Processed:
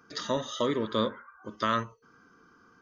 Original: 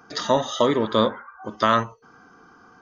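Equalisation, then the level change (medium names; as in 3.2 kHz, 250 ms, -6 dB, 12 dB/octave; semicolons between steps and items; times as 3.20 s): peaking EQ 770 Hz -14.5 dB 0.36 oct; -7.0 dB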